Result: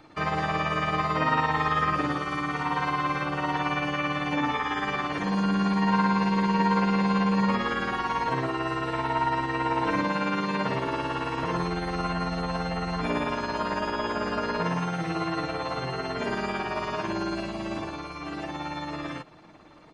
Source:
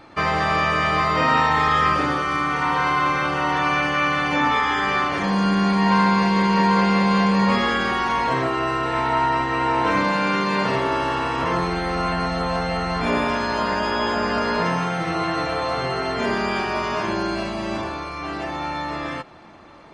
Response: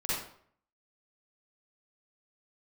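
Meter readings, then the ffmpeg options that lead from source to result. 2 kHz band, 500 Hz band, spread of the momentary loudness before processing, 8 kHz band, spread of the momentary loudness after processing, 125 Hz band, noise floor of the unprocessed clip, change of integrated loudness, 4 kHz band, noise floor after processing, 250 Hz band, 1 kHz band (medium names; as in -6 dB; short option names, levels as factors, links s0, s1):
-7.5 dB, -6.5 dB, 8 LU, -7.5 dB, 8 LU, -4.0 dB, -31 dBFS, -6.5 dB, -8.0 dB, -38 dBFS, -5.0 dB, -7.0 dB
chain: -filter_complex "[0:a]aecho=1:1:6.5:0.31,acrossover=split=480|3300[s0][s1][s2];[s1]tremolo=f=18:d=0.65[s3];[s2]alimiter=level_in=2.99:limit=0.0631:level=0:latency=1:release=375,volume=0.335[s4];[s0][s3][s4]amix=inputs=3:normalize=0,volume=0.562"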